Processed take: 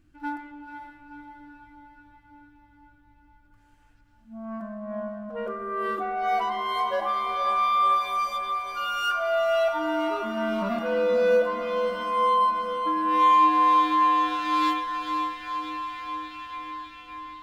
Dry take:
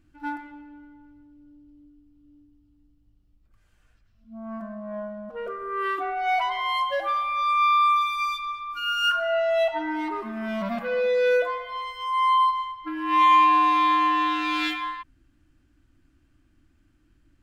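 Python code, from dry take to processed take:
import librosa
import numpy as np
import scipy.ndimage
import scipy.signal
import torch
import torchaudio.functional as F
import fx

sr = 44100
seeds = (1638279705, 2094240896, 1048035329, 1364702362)

y = fx.echo_diffused(x, sr, ms=501, feedback_pct=66, wet_db=-7)
y = fx.dynamic_eq(y, sr, hz=2400.0, q=1.1, threshold_db=-39.0, ratio=4.0, max_db=-8)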